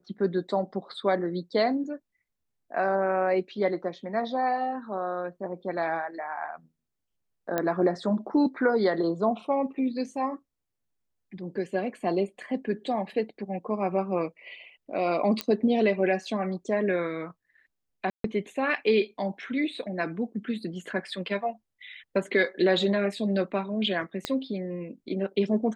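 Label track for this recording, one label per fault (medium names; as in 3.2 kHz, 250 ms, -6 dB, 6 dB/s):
7.580000	7.580000	pop -13 dBFS
15.410000	15.410000	pop -12 dBFS
18.100000	18.240000	dropout 143 ms
24.250000	24.250000	pop -14 dBFS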